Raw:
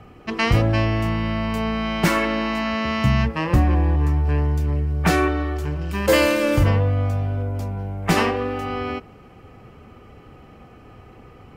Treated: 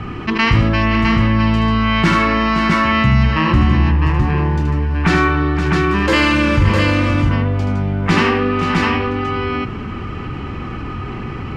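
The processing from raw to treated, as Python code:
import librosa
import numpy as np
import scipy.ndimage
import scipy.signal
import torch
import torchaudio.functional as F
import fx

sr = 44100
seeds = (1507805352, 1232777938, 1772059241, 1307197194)

y = scipy.signal.sosfilt(scipy.signal.butter(2, 4400.0, 'lowpass', fs=sr, output='sos'), x)
y = fx.band_shelf(y, sr, hz=590.0, db=-9.5, octaves=1.0)
y = fx.echo_multitap(y, sr, ms=(77, 522, 657), db=(-6.0, -13.5, -4.5))
y = fx.env_flatten(y, sr, amount_pct=50)
y = y * librosa.db_to_amplitude(2.0)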